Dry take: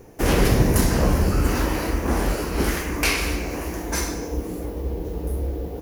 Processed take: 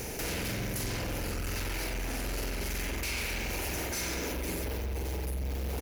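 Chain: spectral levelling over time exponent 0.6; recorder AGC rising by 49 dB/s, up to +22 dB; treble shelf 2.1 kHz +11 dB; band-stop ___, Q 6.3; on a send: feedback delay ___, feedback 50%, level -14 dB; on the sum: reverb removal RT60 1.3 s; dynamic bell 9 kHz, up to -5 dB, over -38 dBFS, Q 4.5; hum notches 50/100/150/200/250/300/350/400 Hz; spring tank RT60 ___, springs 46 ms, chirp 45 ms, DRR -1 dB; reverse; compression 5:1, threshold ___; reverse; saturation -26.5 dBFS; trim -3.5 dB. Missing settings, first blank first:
1.1 kHz, 504 ms, 2 s, -24 dBFS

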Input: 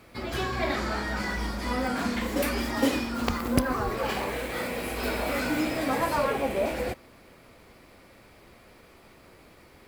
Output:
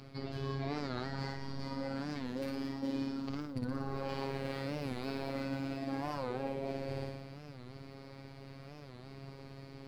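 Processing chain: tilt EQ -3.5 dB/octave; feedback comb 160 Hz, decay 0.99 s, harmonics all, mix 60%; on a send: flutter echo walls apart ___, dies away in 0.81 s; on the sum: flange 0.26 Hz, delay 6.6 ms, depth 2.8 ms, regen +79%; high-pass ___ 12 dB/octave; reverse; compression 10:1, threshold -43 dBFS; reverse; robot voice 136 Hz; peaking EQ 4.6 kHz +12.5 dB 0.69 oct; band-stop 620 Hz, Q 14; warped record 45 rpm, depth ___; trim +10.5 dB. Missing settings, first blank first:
9.6 m, 62 Hz, 160 cents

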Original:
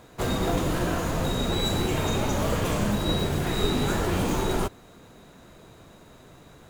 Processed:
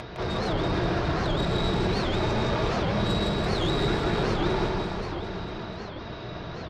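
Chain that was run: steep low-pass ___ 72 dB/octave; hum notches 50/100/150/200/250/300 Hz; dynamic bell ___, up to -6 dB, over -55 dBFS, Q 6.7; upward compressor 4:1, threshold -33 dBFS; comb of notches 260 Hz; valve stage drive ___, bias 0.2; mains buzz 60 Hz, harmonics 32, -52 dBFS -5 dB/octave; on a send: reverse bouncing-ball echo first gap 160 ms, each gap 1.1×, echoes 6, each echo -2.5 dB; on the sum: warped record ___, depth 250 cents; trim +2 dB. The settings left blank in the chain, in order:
5.5 kHz, 2.9 kHz, 26 dB, 78 rpm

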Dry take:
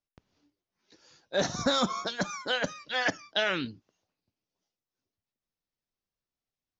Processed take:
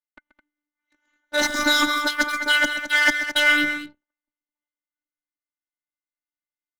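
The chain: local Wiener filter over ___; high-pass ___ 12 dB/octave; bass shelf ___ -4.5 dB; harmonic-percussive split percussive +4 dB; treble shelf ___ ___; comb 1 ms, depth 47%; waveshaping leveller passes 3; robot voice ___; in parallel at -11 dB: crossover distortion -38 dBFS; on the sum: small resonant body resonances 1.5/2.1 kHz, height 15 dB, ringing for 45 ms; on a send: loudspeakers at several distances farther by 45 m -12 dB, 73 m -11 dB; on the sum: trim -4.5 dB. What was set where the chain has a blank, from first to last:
9 samples, 100 Hz, 490 Hz, 5.2 kHz, +7 dB, 296 Hz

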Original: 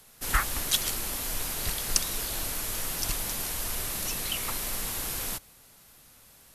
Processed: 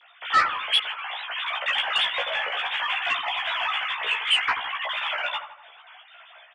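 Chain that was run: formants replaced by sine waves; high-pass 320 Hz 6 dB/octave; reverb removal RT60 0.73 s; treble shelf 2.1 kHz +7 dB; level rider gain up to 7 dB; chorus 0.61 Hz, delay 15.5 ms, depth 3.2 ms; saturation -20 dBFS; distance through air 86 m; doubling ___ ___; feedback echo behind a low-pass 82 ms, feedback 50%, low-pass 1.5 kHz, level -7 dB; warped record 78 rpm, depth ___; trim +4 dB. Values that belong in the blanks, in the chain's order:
14 ms, -3.5 dB, 100 cents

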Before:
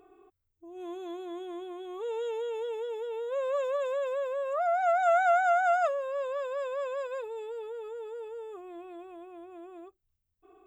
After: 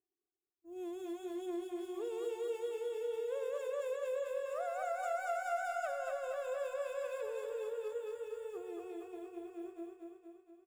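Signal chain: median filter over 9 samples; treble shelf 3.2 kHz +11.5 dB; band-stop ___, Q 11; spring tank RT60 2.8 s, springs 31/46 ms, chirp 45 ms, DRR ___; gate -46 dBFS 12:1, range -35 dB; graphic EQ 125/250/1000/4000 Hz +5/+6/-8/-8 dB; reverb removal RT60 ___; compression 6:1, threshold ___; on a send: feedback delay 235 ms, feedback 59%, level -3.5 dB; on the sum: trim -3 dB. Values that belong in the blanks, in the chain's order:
6.1 kHz, 12 dB, 0.71 s, -35 dBFS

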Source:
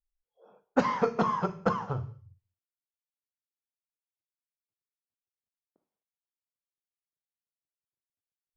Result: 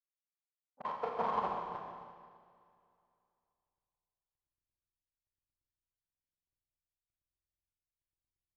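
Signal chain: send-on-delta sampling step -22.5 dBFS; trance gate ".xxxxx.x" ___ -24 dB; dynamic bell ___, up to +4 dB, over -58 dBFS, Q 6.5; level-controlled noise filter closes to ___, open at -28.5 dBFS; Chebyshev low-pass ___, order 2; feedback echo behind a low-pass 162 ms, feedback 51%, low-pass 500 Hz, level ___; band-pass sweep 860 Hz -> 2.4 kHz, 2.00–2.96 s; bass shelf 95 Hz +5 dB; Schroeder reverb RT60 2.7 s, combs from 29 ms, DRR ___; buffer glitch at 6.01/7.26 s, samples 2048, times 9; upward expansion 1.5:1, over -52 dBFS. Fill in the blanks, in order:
131 bpm, 130 Hz, 420 Hz, 4.1 kHz, -9 dB, -2.5 dB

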